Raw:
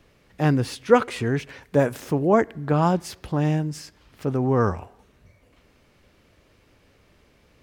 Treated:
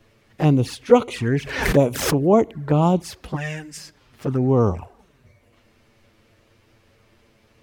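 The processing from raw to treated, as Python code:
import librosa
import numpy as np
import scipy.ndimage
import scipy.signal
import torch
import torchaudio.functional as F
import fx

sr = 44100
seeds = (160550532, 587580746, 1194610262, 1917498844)

y = fx.graphic_eq_10(x, sr, hz=(125, 250, 500, 1000, 2000, 4000, 8000), db=(-6, -11, -5, -8, 10, -3, 6), at=(3.35, 3.76), fade=0.02)
y = fx.env_flanger(y, sr, rest_ms=9.4, full_db=-18.0)
y = fx.pre_swell(y, sr, db_per_s=69.0, at=(1.32, 2.24))
y = F.gain(torch.from_numpy(y), 4.0).numpy()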